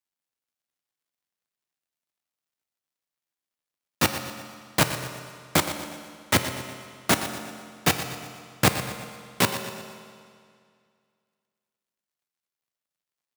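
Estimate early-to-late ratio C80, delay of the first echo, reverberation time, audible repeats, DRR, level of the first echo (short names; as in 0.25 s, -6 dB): 7.5 dB, 0.12 s, 2.1 s, 3, 6.0 dB, -12.5 dB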